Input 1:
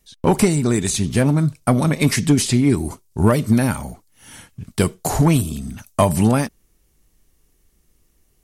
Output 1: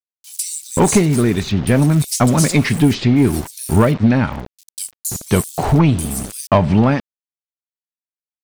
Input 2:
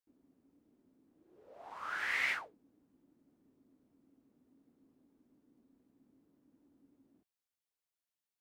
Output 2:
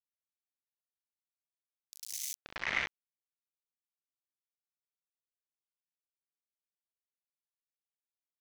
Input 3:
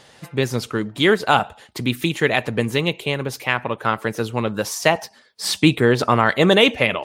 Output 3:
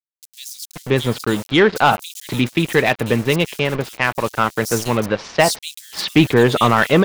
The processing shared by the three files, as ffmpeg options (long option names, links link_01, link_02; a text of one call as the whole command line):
ffmpeg -i in.wav -filter_complex "[0:a]aeval=exprs='val(0)*gte(abs(val(0)),0.0335)':channel_layout=same,acrossover=split=4300[link_01][link_02];[link_01]adelay=530[link_03];[link_03][link_02]amix=inputs=2:normalize=0,acontrast=65,volume=-2dB" out.wav